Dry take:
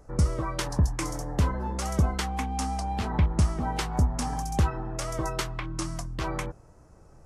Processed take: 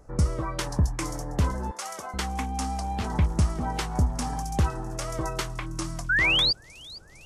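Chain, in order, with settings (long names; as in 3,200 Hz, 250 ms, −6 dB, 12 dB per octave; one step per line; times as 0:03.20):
0:01.71–0:02.14: high-pass filter 730 Hz 12 dB per octave
0:06.09–0:06.53: sound drawn into the spectrogram rise 1,400–4,900 Hz −22 dBFS
delay with a high-pass on its return 455 ms, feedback 72%, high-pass 5,300 Hz, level −13.5 dB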